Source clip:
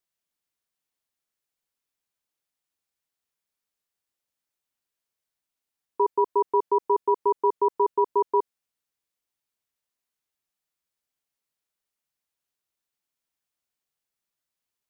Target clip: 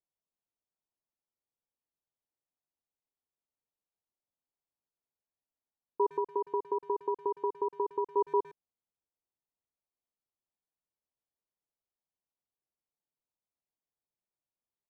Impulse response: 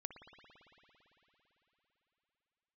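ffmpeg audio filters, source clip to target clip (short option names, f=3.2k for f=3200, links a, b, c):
-filter_complex "[0:a]lowpass=f=1k:w=0.5412,lowpass=f=1k:w=1.3066,asettb=1/sr,asplit=3[a][b][c];[a]atrim=end=6.124[d];[b]atrim=start=6.12:end=8.17,asetpts=PTS-STARTPTS,afade=t=in:d=0.004:c=qsin,afade=t=out:st=2.046:d=0.004:c=qsin,acompressor=threshold=-24dB:ratio=4[e];[c]atrim=start=8.166[f];[d][e]acrossfade=d=0.004:c1=hsin:c2=qsin[g];[g][f]acrossfade=d=0.004:c1=qsin:c2=hsin,asplit=2[h][i];[i]adelay=110,highpass=300,lowpass=3.4k,asoftclip=type=hard:threshold=-22.5dB,volume=-20dB[j];[h][j]amix=inputs=2:normalize=0,volume=-4.5dB"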